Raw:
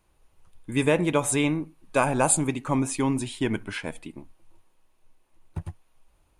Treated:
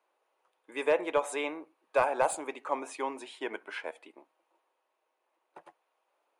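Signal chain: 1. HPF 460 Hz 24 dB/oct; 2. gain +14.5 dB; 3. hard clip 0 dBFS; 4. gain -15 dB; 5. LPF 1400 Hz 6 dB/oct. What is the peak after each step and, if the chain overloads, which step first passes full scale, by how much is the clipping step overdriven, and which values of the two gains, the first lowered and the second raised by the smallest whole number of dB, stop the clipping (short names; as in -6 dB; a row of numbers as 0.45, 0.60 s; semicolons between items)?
-8.0, +6.5, 0.0, -15.0, -15.5 dBFS; step 2, 6.5 dB; step 2 +7.5 dB, step 4 -8 dB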